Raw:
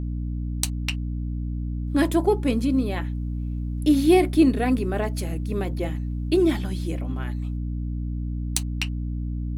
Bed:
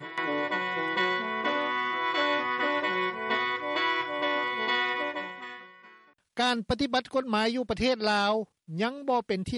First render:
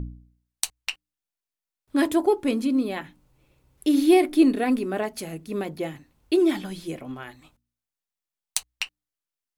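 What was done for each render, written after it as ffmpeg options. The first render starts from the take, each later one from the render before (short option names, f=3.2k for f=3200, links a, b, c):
-af "bandreject=f=60:t=h:w=4,bandreject=f=120:t=h:w=4,bandreject=f=180:t=h:w=4,bandreject=f=240:t=h:w=4,bandreject=f=300:t=h:w=4"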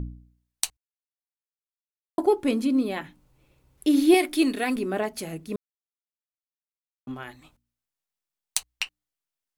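-filter_complex "[0:a]asettb=1/sr,asplit=3[a][b][c];[a]atrim=end=4.144[d];[b]atrim=start=4.14:end=4.76,asetpts=PTS-STARTPTS,afade=t=in:d=0.004:c=qsin,afade=t=out:st=0.616:d=0.004:c=qsin,tiltshelf=f=1.1k:g=-6[e];[c]atrim=start=4.756[f];[d][e]acrossfade=d=0.004:c1=hsin:c2=qsin[g];[g][f]acrossfade=d=0.004:c1=qsin:c2=hsin,asplit=5[h][i][j][k][l];[h]atrim=end=0.77,asetpts=PTS-STARTPTS,afade=t=out:st=0.766:d=0.004:c=hsin[m];[i]atrim=start=0.77:end=2.18,asetpts=PTS-STARTPTS,volume=0[n];[j]atrim=start=2.18:end=5.56,asetpts=PTS-STARTPTS,afade=t=in:d=0.004:c=hsin,afade=t=out:st=3.376:d=0.004:c=hsin[o];[k]atrim=start=5.56:end=7.07,asetpts=PTS-STARTPTS,volume=0[p];[l]atrim=start=7.07,asetpts=PTS-STARTPTS,afade=t=in:d=0.004:c=hsin[q];[m][n][o][p][q]concat=n=5:v=0:a=1"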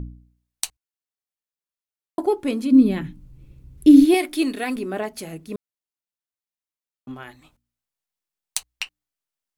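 -filter_complex "[0:a]asplit=3[a][b][c];[a]afade=t=out:st=2.71:d=0.02[d];[b]asubboost=boost=11.5:cutoff=240,afade=t=in:st=2.71:d=0.02,afade=t=out:st=4.04:d=0.02[e];[c]afade=t=in:st=4.04:d=0.02[f];[d][e][f]amix=inputs=3:normalize=0"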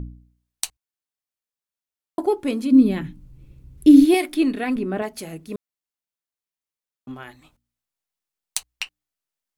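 -filter_complex "[0:a]asettb=1/sr,asplit=3[a][b][c];[a]atrim=end=4.344[d];[b]atrim=start=4.34:end=5.02,asetpts=PTS-STARTPTS,afade=t=in:d=0.004:c=qsin,afade=t=out:st=0.676:d=0.004:c=qsin,bass=f=250:g=8,treble=f=4k:g=-10[e];[c]atrim=start=5.016[f];[d][e]acrossfade=d=0.004:c1=hsin:c2=qsin[g];[g][f]acrossfade=d=0.004:c1=qsin:c2=hsin"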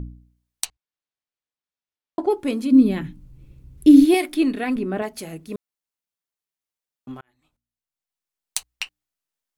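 -filter_complex "[0:a]asplit=3[a][b][c];[a]afade=t=out:st=0.64:d=0.02[d];[b]lowpass=4.9k,afade=t=in:st=0.64:d=0.02,afade=t=out:st=2.29:d=0.02[e];[c]afade=t=in:st=2.29:d=0.02[f];[d][e][f]amix=inputs=3:normalize=0,asplit=2[g][h];[g]atrim=end=7.21,asetpts=PTS-STARTPTS,afade=t=out:st=7.206:d=0.004:c=hsin[i];[h]atrim=start=7.21,asetpts=PTS-STARTPTS,afade=t=in:d=1.36[j];[i][j]concat=n=2:v=0:a=1"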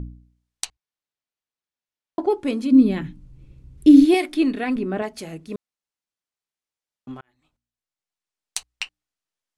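-af "lowpass=8.4k"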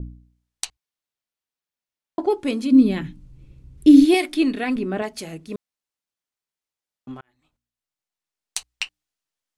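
-af "adynamicequalizer=threshold=0.0112:dfrequency=2200:dqfactor=0.7:tfrequency=2200:tqfactor=0.7:attack=5:release=100:ratio=0.375:range=2:mode=boostabove:tftype=highshelf"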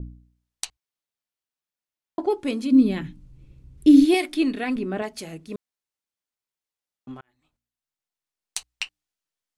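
-af "volume=-2.5dB"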